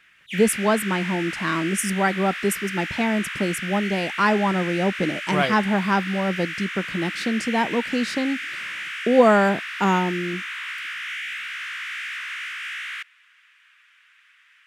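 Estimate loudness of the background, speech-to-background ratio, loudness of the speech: −30.0 LKFS, 7.0 dB, −23.0 LKFS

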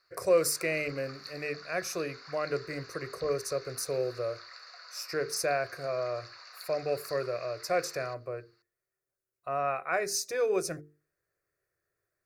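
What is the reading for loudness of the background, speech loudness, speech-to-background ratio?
−47.5 LKFS, −32.5 LKFS, 15.0 dB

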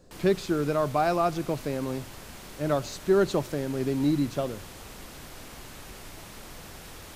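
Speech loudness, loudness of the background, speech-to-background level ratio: −27.5 LKFS, −44.0 LKFS, 16.5 dB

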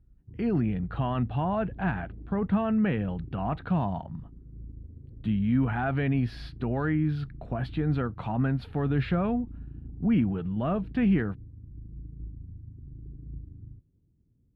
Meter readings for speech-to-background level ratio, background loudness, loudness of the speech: 16.5 dB, −45.0 LKFS, −28.5 LKFS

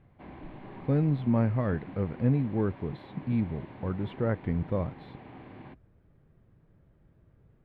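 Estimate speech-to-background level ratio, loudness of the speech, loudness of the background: 16.5 dB, −30.0 LKFS, −46.5 LKFS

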